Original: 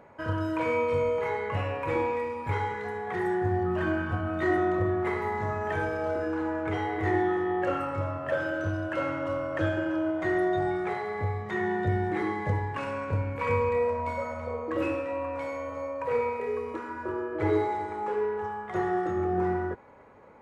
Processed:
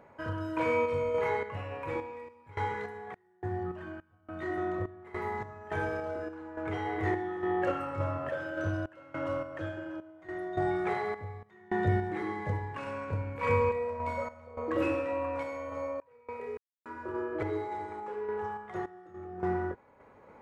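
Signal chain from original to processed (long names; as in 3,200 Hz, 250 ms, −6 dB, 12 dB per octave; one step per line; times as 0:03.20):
sample-and-hold tremolo, depth 100%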